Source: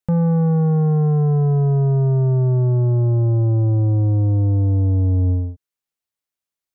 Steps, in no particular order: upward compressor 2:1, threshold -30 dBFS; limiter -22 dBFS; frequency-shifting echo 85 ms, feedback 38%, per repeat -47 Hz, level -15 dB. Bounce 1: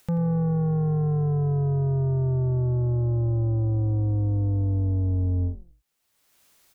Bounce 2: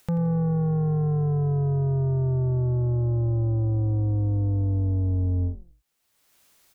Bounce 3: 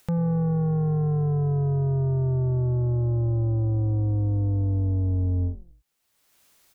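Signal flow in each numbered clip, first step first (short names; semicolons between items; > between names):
upward compressor > limiter > frequency-shifting echo; limiter > upward compressor > frequency-shifting echo; limiter > frequency-shifting echo > upward compressor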